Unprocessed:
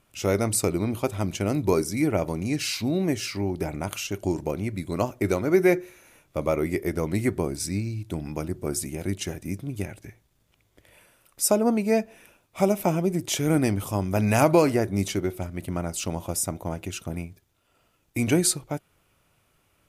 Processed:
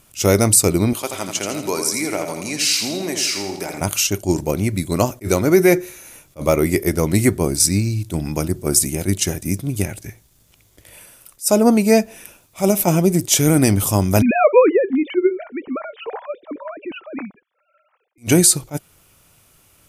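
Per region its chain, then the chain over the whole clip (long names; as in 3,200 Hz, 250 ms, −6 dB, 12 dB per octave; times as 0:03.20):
0:00.93–0:03.81: meter weighting curve A + downward compressor 1.5 to 1, threshold −35 dBFS + repeating echo 82 ms, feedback 46%, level −6.5 dB
0:14.22–0:18.18: three sine waves on the formant tracks + low-pass filter 1,900 Hz + notch filter 670 Hz, Q 9.5
whole clip: bass and treble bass +2 dB, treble +10 dB; boost into a limiter +9 dB; level that may rise only so fast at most 360 dB per second; level −1 dB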